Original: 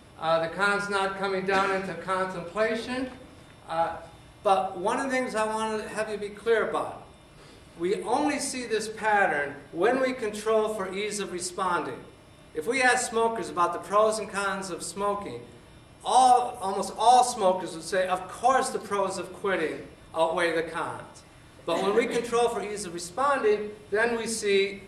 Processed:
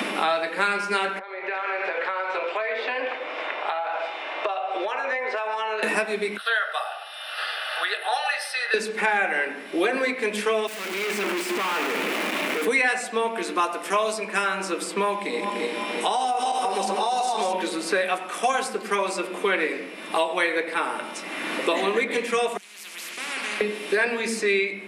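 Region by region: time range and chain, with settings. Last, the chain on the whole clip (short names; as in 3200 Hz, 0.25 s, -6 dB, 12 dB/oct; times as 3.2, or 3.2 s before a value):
1.19–5.83 HPF 510 Hz 24 dB/oct + compressor 10:1, threshold -38 dBFS + tape spacing loss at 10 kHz 36 dB
6.37–8.74 HPF 820 Hz 24 dB/oct + fixed phaser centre 1500 Hz, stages 8
10.67–12.65 infinite clipping + expander -28 dBFS
15.16–17.53 regenerating reverse delay 0.17 s, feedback 57%, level -3.5 dB + LPF 11000 Hz + compressor 4:1, threshold -27 dBFS
22.57–23.61 passive tone stack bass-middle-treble 6-0-2 + spectral compressor 10:1
whole clip: Chebyshev high-pass 200 Hz, order 5; bell 2400 Hz +10 dB 0.92 oct; three-band squash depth 100%; gain +2 dB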